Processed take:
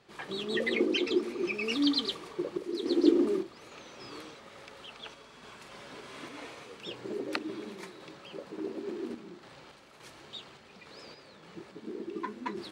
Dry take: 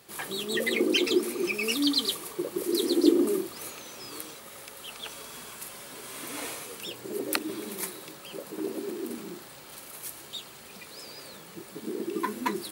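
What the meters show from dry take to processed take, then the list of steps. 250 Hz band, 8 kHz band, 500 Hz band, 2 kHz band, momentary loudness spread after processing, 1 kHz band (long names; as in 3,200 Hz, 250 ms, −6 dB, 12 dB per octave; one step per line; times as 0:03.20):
−2.5 dB, −17.0 dB, −3.0 dB, −4.0 dB, 22 LU, −5.0 dB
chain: sample-and-hold tremolo
noise that follows the level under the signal 25 dB
high-frequency loss of the air 140 metres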